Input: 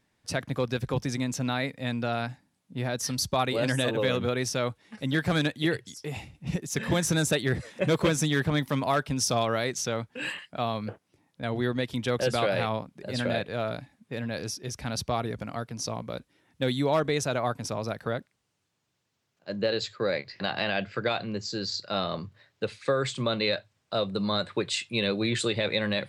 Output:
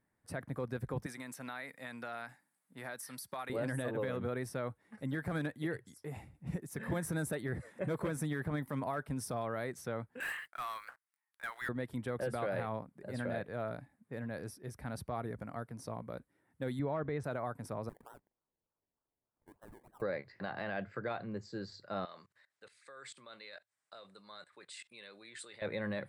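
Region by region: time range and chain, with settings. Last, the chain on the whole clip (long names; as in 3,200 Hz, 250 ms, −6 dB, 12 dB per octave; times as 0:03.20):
0:01.06–0:03.50: tilt shelving filter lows −9 dB, about 770 Hz + downward compressor 4 to 1, threshold −28 dBFS + high-pass filter 150 Hz
0:10.20–0:11.69: high-pass filter 1,200 Hz 24 dB per octave + leveller curve on the samples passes 3
0:16.79–0:17.24: low-pass filter 3,400 Hz + parametric band 85 Hz +6.5 dB 1.5 octaves
0:17.89–0:20.02: linear-phase brick-wall band-pass 840–2,500 Hz + downward compressor 2.5 to 1, threshold −45 dBFS + sample-and-hold swept by an LFO 27×, swing 60% 3.3 Hz
0:22.05–0:25.62: output level in coarse steps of 20 dB + meter weighting curve ITU-R 468
whole clip: flat-topped bell 4,100 Hz −12.5 dB; brickwall limiter −18.5 dBFS; dynamic equaliser 7,100 Hz, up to −6 dB, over −57 dBFS, Q 2.5; level −8 dB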